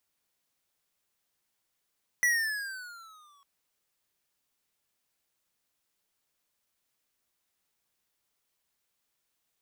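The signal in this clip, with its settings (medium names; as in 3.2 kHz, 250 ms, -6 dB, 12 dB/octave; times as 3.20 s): gliding synth tone square, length 1.20 s, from 1.97 kHz, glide -10 st, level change -39.5 dB, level -23 dB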